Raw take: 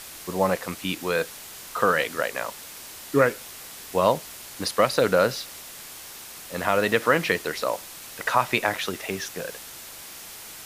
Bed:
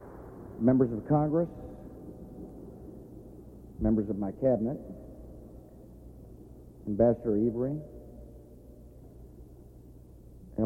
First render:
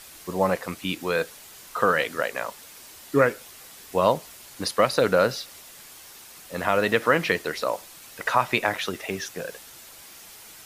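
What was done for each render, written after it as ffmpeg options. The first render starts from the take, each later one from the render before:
-af "afftdn=nr=6:nf=-42"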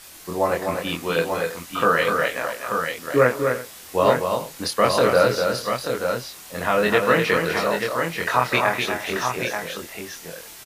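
-filter_complex "[0:a]asplit=2[a][b];[b]adelay=24,volume=-2dB[c];[a][c]amix=inputs=2:normalize=0,asplit=2[d][e];[e]aecho=0:1:192|251|340|860|885:0.112|0.531|0.126|0.119|0.501[f];[d][f]amix=inputs=2:normalize=0"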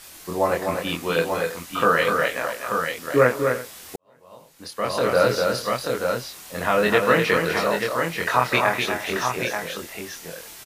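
-filter_complex "[0:a]asplit=2[a][b];[a]atrim=end=3.96,asetpts=PTS-STARTPTS,afade=t=out:st=3.956:d=0.004:c=hsin[c];[b]atrim=start=3.96,asetpts=PTS-STARTPTS,afade=t=in:d=1.35:c=qua[d];[c][d]concat=n=2:v=0:a=1"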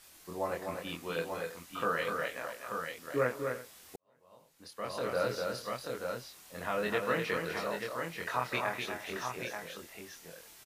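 -af "volume=-13.5dB"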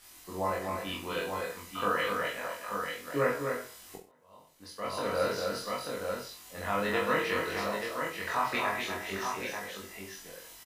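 -filter_complex "[0:a]asplit=2[a][b];[b]adelay=21,volume=-3dB[c];[a][c]amix=inputs=2:normalize=0,aecho=1:1:20|43|69.45|99.87|134.8:0.631|0.398|0.251|0.158|0.1"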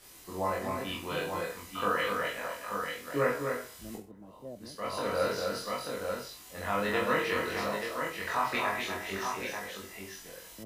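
-filter_complex "[1:a]volume=-18.5dB[a];[0:a][a]amix=inputs=2:normalize=0"

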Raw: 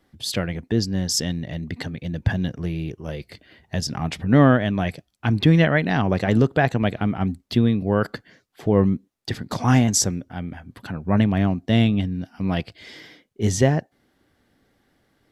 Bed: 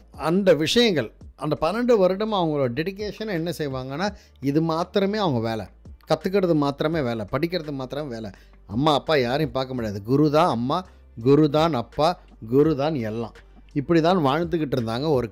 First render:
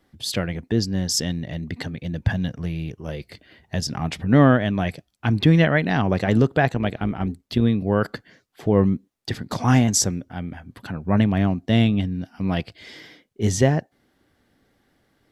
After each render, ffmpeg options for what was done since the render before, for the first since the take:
-filter_complex "[0:a]asettb=1/sr,asplit=3[a][b][c];[a]atrim=end=2.224[d];[b]atrim=start=2.22:end=3,asetpts=PTS-STARTPTS,afade=t=in:d=0.004:c=qsin,afade=t=out:st=0.776:d=0.004:c=qsin,equalizer=f=360:w=2.9:g=-7[e];[c]atrim=start=2.996[f];[d][e]acrossfade=d=0.004:c1=hsin:c2=qsin[g];[g][f]acrossfade=d=0.004:c1=qsin:c2=hsin,asplit=3[h][i][j];[h]afade=t=out:st=6.68:d=0.02[k];[i]tremolo=f=160:d=0.462,afade=t=in:st=6.68:d=0.02,afade=t=out:st=7.61:d=0.02[l];[j]afade=t=in:st=7.61:d=0.02[m];[k][l][m]amix=inputs=3:normalize=0"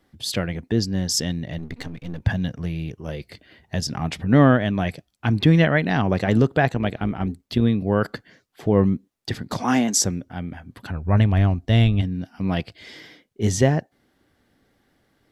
-filter_complex "[0:a]asettb=1/sr,asplit=3[a][b][c];[a]atrim=end=1.584[d];[b]atrim=start=1.58:end=2.21,asetpts=PTS-STARTPTS,afade=t=in:d=0.004:c=qsin,afade=t=out:st=0.626:d=0.004:c=qsin,aeval=exprs='if(lt(val(0),0),0.251*val(0),val(0))':c=same[e];[c]atrim=start=2.206[f];[d][e]acrossfade=d=0.004:c1=hsin:c2=qsin[g];[g][f]acrossfade=d=0.004:c1=qsin:c2=hsin,asettb=1/sr,asplit=3[h][i][j];[h]atrim=end=9.634[k];[i]atrim=start=9.63:end=10.05,asetpts=PTS-STARTPTS,afade=t=in:d=0.004:c=qsin,afade=t=out:st=0.416:d=0.004:c=qsin,highpass=f=200:w=0.5412,highpass=f=200:w=1.3066[l];[j]atrim=start=10.046[m];[k][l]acrossfade=d=0.004:c1=hsin:c2=qsin[n];[n][m]acrossfade=d=0.004:c1=qsin:c2=hsin,asplit=3[o][p][q];[o]afade=t=out:st=10.9:d=0.02[r];[p]asubboost=boost=8:cutoff=67,afade=t=in:st=10.9:d=0.02,afade=t=out:st=12.01:d=0.02[s];[q]afade=t=in:st=12.01:d=0.02[t];[r][s][t]amix=inputs=3:normalize=0"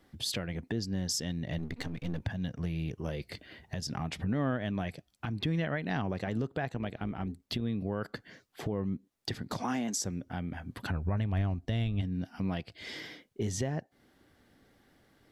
-af "acompressor=threshold=-32dB:ratio=2,alimiter=limit=-22.5dB:level=0:latency=1:release=328"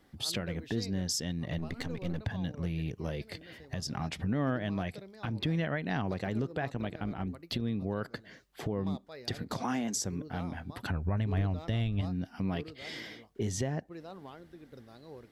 -filter_complex "[1:a]volume=-27.5dB[a];[0:a][a]amix=inputs=2:normalize=0"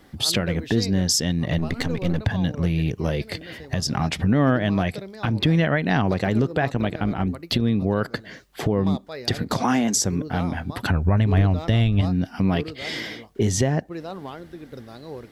-af "volume=12dB"

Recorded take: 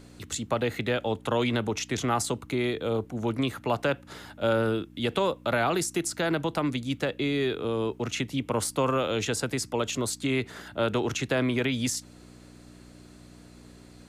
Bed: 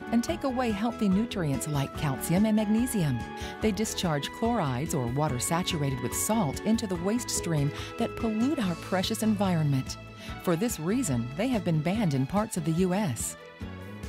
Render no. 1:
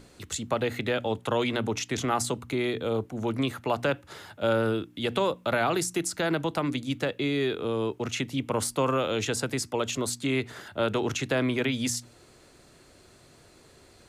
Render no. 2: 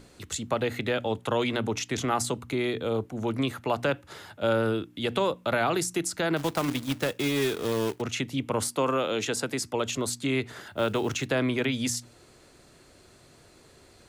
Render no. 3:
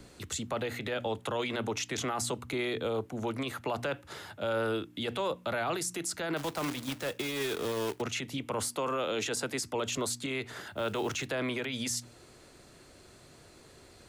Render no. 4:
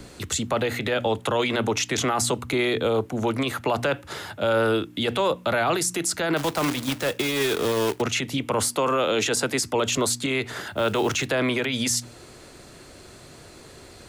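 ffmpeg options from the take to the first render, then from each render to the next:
-af "bandreject=f=60:t=h:w=4,bandreject=f=120:t=h:w=4,bandreject=f=180:t=h:w=4,bandreject=f=240:t=h:w=4,bandreject=f=300:t=h:w=4"
-filter_complex "[0:a]asplit=3[a][b][c];[a]afade=t=out:st=6.36:d=0.02[d];[b]acrusher=bits=2:mode=log:mix=0:aa=0.000001,afade=t=in:st=6.36:d=0.02,afade=t=out:st=8:d=0.02[e];[c]afade=t=in:st=8:d=0.02[f];[d][e][f]amix=inputs=3:normalize=0,asettb=1/sr,asplit=3[g][h][i];[g]atrim=end=8.684[j];[h]atrim=start=8.68:end=9.63,asetpts=PTS-STARTPTS,afade=t=in:d=0.004:c=qsin,afade=t=out:st=0.946:d=0.004:c=qsin,highpass=160[k];[i]atrim=start=9.626[l];[j][k]acrossfade=d=0.004:c1=hsin:c2=qsin[m];[m][l]acrossfade=d=0.004:c1=qsin:c2=hsin,asettb=1/sr,asplit=3[n][o][p];[n]atrim=end=10.684[q];[o]atrim=start=10.68:end=11.26,asetpts=PTS-STARTPTS,afade=t=in:d=0.004:c=qsin,afade=t=out:st=0.576:d=0.004:c=qsin,acrusher=bits=7:mode=log:mix=0:aa=0.000001[r];[p]atrim=start=11.256[s];[q][r]acrossfade=d=0.004:c1=hsin:c2=qsin[t];[t][s]acrossfade=d=0.004:c1=qsin:c2=hsin"
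-filter_complex "[0:a]acrossover=split=410|3000[a][b][c];[a]acompressor=threshold=-35dB:ratio=6[d];[d][b][c]amix=inputs=3:normalize=0,acrossover=split=100[e][f];[f]alimiter=limit=-24dB:level=0:latency=1:release=16[g];[e][g]amix=inputs=2:normalize=0"
-af "volume=9.5dB"

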